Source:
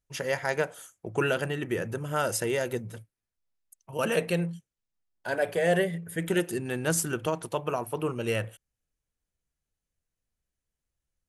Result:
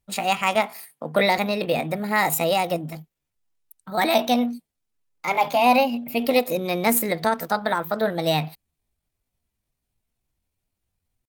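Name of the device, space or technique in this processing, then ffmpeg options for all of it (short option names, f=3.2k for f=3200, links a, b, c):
chipmunk voice: -filter_complex "[0:a]asettb=1/sr,asplit=3[a][b][c];[a]atrim=end=0.574[d];[b]atrim=start=0.57:end=1.4,asetpts=PTS-STARTPTS,afade=t=in:d=0.004:c=qsin,afade=t=out:st=0.826:d=0.004:c=qsin,highpass=f=100:w=0.5412,highpass=f=100:w=1.3066[e];[c]atrim=start=1.396[f];[d][e]acrossfade=d=0.004:c1=hsin:c2=qsin[g];[g][f]acrossfade=d=0.004:c1=qsin:c2=hsin,asetrate=62367,aresample=44100,atempo=0.707107,volume=7dB"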